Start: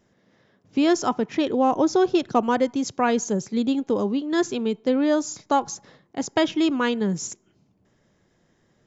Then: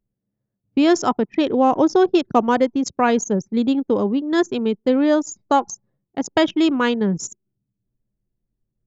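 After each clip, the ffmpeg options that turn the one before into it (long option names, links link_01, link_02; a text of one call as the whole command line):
ffmpeg -i in.wav -af "anlmdn=25.1,volume=4dB" out.wav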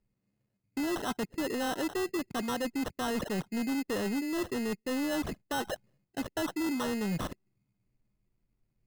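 ffmpeg -i in.wav -af "areverse,acompressor=threshold=-25dB:ratio=6,areverse,acrusher=samples=19:mix=1:aa=0.000001,asoftclip=type=tanh:threshold=-28dB" out.wav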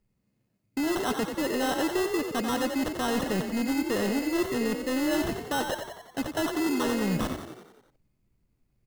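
ffmpeg -i in.wav -filter_complex "[0:a]asplit=8[link_01][link_02][link_03][link_04][link_05][link_06][link_07][link_08];[link_02]adelay=90,afreqshift=37,volume=-7dB[link_09];[link_03]adelay=180,afreqshift=74,volume=-11.9dB[link_10];[link_04]adelay=270,afreqshift=111,volume=-16.8dB[link_11];[link_05]adelay=360,afreqshift=148,volume=-21.6dB[link_12];[link_06]adelay=450,afreqshift=185,volume=-26.5dB[link_13];[link_07]adelay=540,afreqshift=222,volume=-31.4dB[link_14];[link_08]adelay=630,afreqshift=259,volume=-36.3dB[link_15];[link_01][link_09][link_10][link_11][link_12][link_13][link_14][link_15]amix=inputs=8:normalize=0,volume=4dB" out.wav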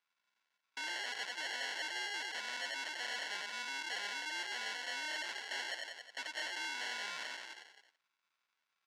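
ffmpeg -i in.wav -af "acrusher=samples=36:mix=1:aa=0.000001,asoftclip=type=tanh:threshold=-32.5dB,asuperpass=centerf=2900:order=4:qfactor=0.63,volume=4dB" out.wav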